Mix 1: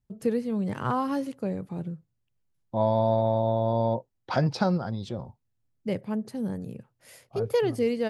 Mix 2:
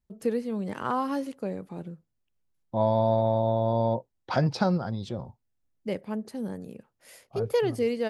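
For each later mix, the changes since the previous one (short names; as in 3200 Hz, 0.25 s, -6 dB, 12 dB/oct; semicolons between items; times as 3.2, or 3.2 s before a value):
first voice: add bell 120 Hz -14 dB 0.83 oct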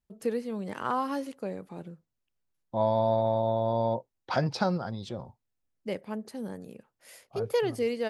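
master: add low shelf 360 Hz -5.5 dB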